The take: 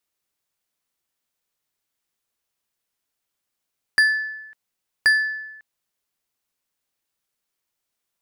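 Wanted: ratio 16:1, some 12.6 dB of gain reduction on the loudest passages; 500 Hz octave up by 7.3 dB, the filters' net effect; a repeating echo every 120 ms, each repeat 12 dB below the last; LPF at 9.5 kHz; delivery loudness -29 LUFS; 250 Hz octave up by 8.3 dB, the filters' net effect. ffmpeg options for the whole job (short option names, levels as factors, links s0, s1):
-af "lowpass=9500,equalizer=f=250:t=o:g=8.5,equalizer=f=500:t=o:g=7,acompressor=threshold=0.0562:ratio=16,aecho=1:1:120|240|360:0.251|0.0628|0.0157,volume=1.12"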